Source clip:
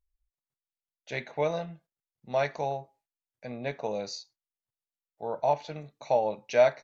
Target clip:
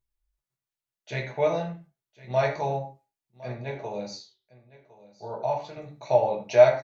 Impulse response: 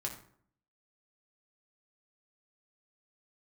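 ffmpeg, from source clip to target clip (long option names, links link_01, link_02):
-filter_complex "[0:a]asettb=1/sr,asplit=3[link_01][link_02][link_03];[link_01]atrim=end=3.524[link_04];[link_02]atrim=start=3.52:end=5.77,asetpts=PTS-STARTPTS,afade=type=in:duration=0.004:curve=qsin,afade=type=out:start_time=2.246:duration=0.004:curve=qsin,flanger=delay=8.6:depth=4.8:regen=82:speed=1.8:shape=sinusoidal[link_05];[link_03]atrim=start=5.766[link_06];[link_04][link_05]acrossfade=duration=0.004:curve1=hsin:curve2=qsin[link_07];[link_07][link_06]acrossfade=duration=0.004:curve1=qsin:curve2=hsin,aecho=1:1:1059:0.106[link_08];[1:a]atrim=start_sample=2205,atrim=end_sample=6174[link_09];[link_08][link_09]afir=irnorm=-1:irlink=0,volume=2.5dB"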